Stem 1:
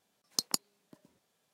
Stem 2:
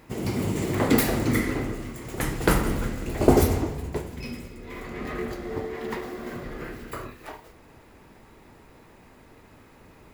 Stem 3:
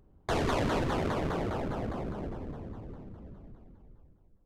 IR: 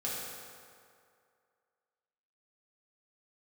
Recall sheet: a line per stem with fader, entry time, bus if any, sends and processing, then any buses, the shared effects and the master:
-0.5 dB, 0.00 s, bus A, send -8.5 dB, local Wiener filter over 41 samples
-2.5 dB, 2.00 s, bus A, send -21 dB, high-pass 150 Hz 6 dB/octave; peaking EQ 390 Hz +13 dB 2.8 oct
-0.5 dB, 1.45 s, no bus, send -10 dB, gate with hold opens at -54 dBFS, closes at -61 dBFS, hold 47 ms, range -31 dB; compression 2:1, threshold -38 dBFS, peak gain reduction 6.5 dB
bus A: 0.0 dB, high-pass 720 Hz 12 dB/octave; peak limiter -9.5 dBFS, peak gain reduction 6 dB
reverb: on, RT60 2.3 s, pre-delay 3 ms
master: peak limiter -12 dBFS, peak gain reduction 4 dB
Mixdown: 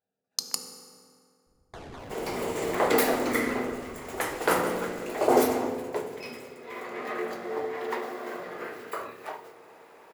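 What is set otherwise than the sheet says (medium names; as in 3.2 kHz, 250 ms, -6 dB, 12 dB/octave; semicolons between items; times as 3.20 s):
stem 3 -0.5 dB -> -10.0 dB; master: missing peak limiter -12 dBFS, peak gain reduction 4 dB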